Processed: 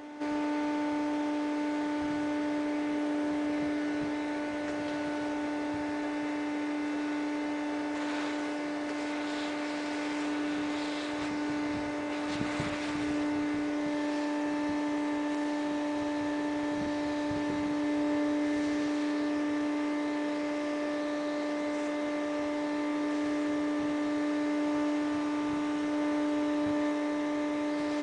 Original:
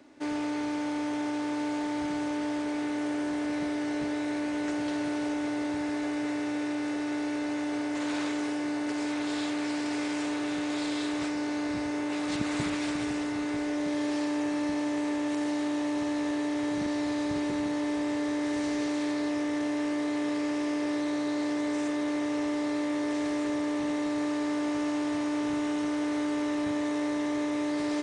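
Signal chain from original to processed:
high-shelf EQ 5,100 Hz −9.5 dB
mains-hum notches 60/120/180/240/300/360/420 Hz
on a send: backwards echo 1,100 ms −11 dB

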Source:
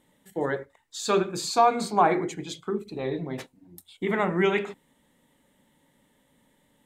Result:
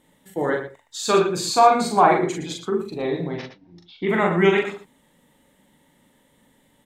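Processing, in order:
0:03.31–0:04.09: elliptic low-pass filter 5,600 Hz, stop band 40 dB
on a send: multi-tap delay 41/116 ms −3/−10.5 dB
on the sum: level +3.5 dB

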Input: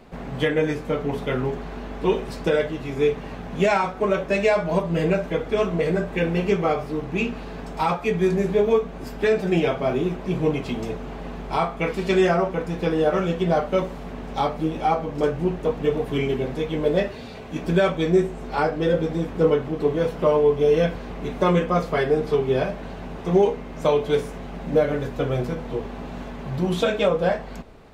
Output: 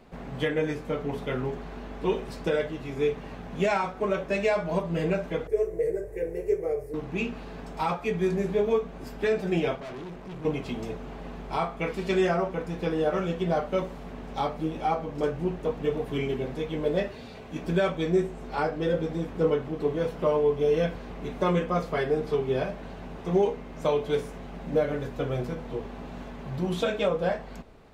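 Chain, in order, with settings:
0:05.47–0:06.94: drawn EQ curve 120 Hz 0 dB, 200 Hz −25 dB, 440 Hz +5 dB, 740 Hz −12 dB, 1,300 Hz −20 dB, 1,900 Hz −7 dB, 3,300 Hz −27 dB, 5,000 Hz −12 dB, 10,000 Hz +5 dB
0:09.75–0:10.45: tube saturation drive 31 dB, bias 0.55
level −5.5 dB

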